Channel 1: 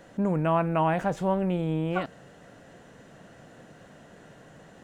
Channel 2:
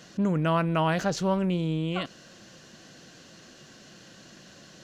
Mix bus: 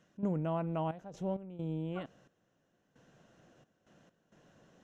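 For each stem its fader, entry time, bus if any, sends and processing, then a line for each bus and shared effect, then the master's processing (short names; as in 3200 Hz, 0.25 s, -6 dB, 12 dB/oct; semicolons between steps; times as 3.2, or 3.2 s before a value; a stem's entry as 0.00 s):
-15.0 dB, 0.00 s, no send, LPF 1500 Hz 24 dB/oct
-4.5 dB, 0.00 s, no send, high shelf 2900 Hz -7.5 dB; auto duck -10 dB, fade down 0.45 s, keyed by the first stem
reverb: off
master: bell 4500 Hz -13 dB 0.26 oct; step gate ".xxx.x.xxx.." 66 bpm -12 dB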